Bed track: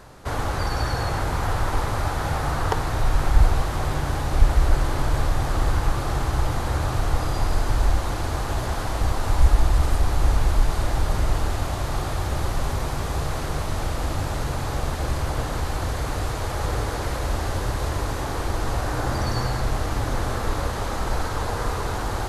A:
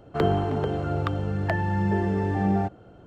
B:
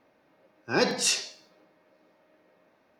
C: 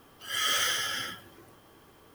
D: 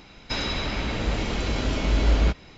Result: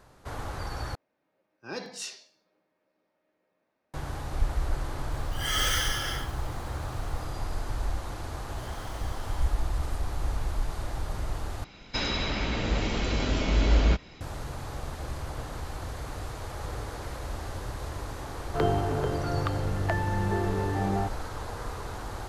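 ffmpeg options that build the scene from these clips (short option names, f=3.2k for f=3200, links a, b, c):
-filter_complex "[3:a]asplit=2[a][b];[0:a]volume=-10.5dB[c];[b]acompressor=threshold=-36dB:ratio=6:attack=3.2:release=140:knee=1:detection=peak[d];[1:a]equalizer=f=210:w=2.6:g=-6.5[e];[c]asplit=3[f][g][h];[f]atrim=end=0.954[i];[2:a]atrim=end=2.99,asetpts=PTS-STARTPTS,volume=-13dB[j];[g]atrim=start=3.936:end=11.644[k];[4:a]atrim=end=2.57,asetpts=PTS-STARTPTS,volume=-1.5dB[l];[h]atrim=start=14.206[m];[a]atrim=end=2.14,asetpts=PTS-STARTPTS,volume=-0.5dB,afade=t=in:d=0.004:c=hsin,afade=t=out:st=2.136:d=0.004:c=hsin,adelay=5110[n];[d]atrim=end=2.14,asetpts=PTS-STARTPTS,volume=-14dB,afade=t=in:d=0.004:c=hsin,afade=t=out:st=2.136:d=0.004:c=hsin,adelay=367794S[o];[e]atrim=end=3.06,asetpts=PTS-STARTPTS,volume=-2.5dB,afade=t=in:d=0.004:c=hsin,afade=t=out:st=3.056:d=0.004:c=hsin,adelay=18400[p];[i][j]acrossfade=d=0.004:c1=hsin:c2=hsin[q];[q][k]acrossfade=d=0.004:c1=hsin:c2=hsin[r];[r][l]acrossfade=d=0.004:c1=hsin:c2=hsin[s];[s][m]acrossfade=d=0.004:c1=hsin:c2=hsin[t];[t][n][o][p]amix=inputs=4:normalize=0"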